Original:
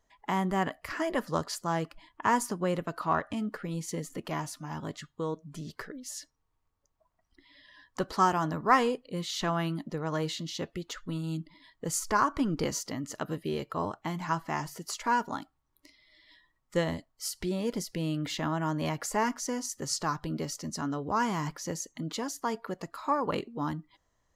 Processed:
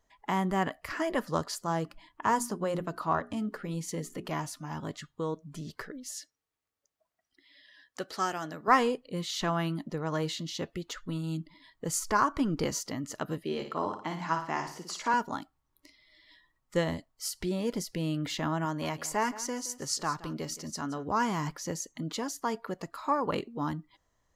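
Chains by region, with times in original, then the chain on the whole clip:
0:01.47–0:04.27: mains-hum notches 60/120/180/240/300/360/420 Hz + dynamic equaliser 2,300 Hz, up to −5 dB, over −46 dBFS, Q 1.3
0:06.11–0:08.68: high-pass filter 580 Hz 6 dB per octave + parametric band 1,000 Hz −12 dB 0.5 octaves
0:13.44–0:15.14: three-way crossover with the lows and the highs turned down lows −12 dB, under 180 Hz, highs −12 dB, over 7,400 Hz + flutter between parallel walls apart 9.7 metres, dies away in 0.46 s
0:18.65–0:21.07: low-shelf EQ 390 Hz −4.5 dB + single-tap delay 171 ms −16 dB
whole clip: no processing

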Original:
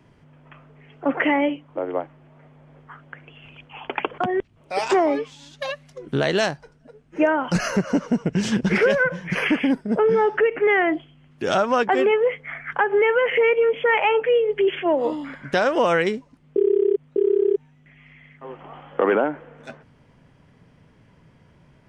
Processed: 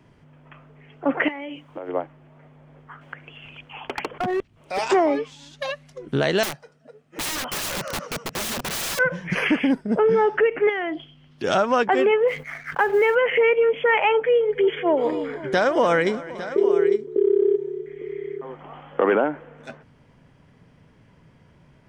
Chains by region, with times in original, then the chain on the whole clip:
0:01.28–0:01.89: high-shelf EQ 2,200 Hz +10.5 dB + downward compressor 10 to 1, threshold −29 dBFS
0:03.01–0:04.79: hard clipping −20 dBFS + one half of a high-frequency compander encoder only
0:06.43–0:08.99: high-pass filter 180 Hz + comb filter 1.6 ms, depth 36% + wrap-around overflow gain 23 dB
0:10.69–0:11.44: flat-topped bell 4,200 Hz +8.5 dB 1.1 octaves + downward compressor 2 to 1, threshold −29 dBFS
0:12.28–0:13.15: mu-law and A-law mismatch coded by A + level that may fall only so fast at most 120 dB per second
0:14.12–0:18.63: notch filter 2,700 Hz, Q 6.1 + multi-tap delay 287/513/854 ms −18/−19/−13 dB
whole clip: no processing

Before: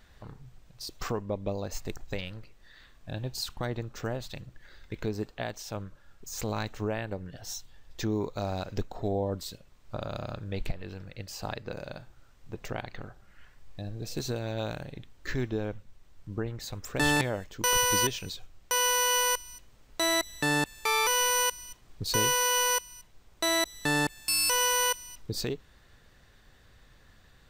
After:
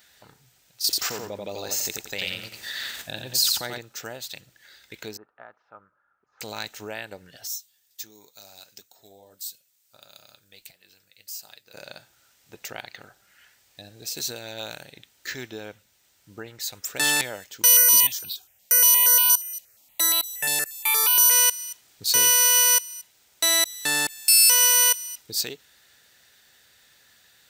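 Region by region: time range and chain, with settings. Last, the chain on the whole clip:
0:00.84–0:03.78: repeating echo 88 ms, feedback 25%, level −5 dB + envelope flattener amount 70%
0:05.17–0:06.41: transistor ladder low-pass 1,400 Hz, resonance 65% + low-shelf EQ 130 Hz −7 dB
0:07.47–0:11.74: first-order pre-emphasis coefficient 0.8 + flanger 1.5 Hz, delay 4.9 ms, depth 5.1 ms, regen −63%
0:17.65–0:21.31: parametric band 13,000 Hz +7.5 dB 0.48 octaves + step-sequenced phaser 8.5 Hz 340–1,900 Hz
whole clip: high-pass filter 58 Hz; spectral tilt +4 dB per octave; notch filter 1,100 Hz, Q 6

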